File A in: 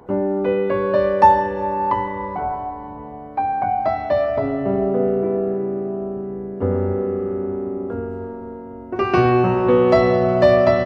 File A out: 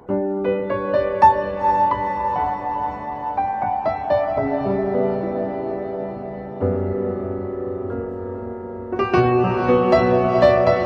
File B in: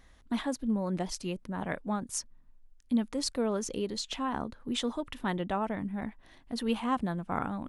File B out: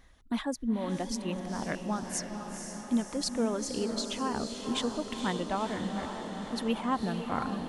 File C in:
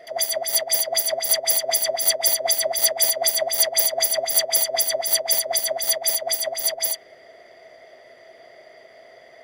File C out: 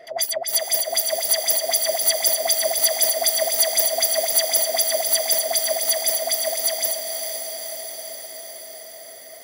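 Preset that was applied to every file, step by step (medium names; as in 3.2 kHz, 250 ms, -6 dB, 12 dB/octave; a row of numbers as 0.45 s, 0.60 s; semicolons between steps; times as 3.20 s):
reverb removal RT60 0.58 s; echo that smears into a reverb 485 ms, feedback 68%, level -6.5 dB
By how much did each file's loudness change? -1.0 LU, +0.5 LU, +0.5 LU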